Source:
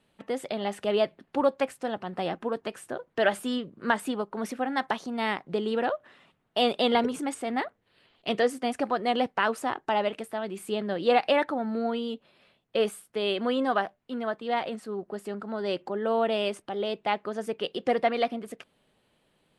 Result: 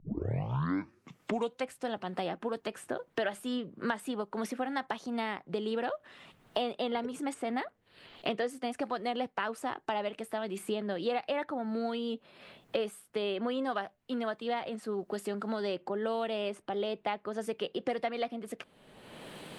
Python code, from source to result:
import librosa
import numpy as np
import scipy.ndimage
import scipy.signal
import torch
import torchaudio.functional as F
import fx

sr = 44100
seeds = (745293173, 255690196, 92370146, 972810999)

y = fx.tape_start_head(x, sr, length_s=1.71)
y = fx.band_squash(y, sr, depth_pct=100)
y = y * librosa.db_to_amplitude(-7.0)